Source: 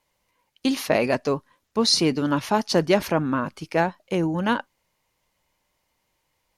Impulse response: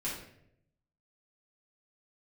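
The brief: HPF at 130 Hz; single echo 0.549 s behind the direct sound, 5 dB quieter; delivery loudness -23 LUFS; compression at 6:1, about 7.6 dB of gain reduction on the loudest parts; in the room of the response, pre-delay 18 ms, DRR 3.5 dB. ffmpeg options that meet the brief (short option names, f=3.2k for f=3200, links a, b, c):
-filter_complex "[0:a]highpass=130,acompressor=threshold=-23dB:ratio=6,aecho=1:1:549:0.562,asplit=2[a][b];[1:a]atrim=start_sample=2205,adelay=18[c];[b][c]afir=irnorm=-1:irlink=0,volume=-7dB[d];[a][d]amix=inputs=2:normalize=0,volume=3dB"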